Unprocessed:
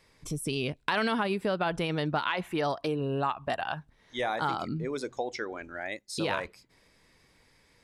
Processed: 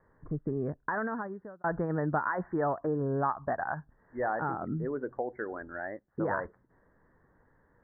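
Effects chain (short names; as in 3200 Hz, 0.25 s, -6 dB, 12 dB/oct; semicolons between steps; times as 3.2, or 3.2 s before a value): steep low-pass 1800 Hz 96 dB/oct; 0.62–1.64 fade out; 4.38–5.48 dynamic EQ 1100 Hz, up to -6 dB, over -44 dBFS, Q 1.6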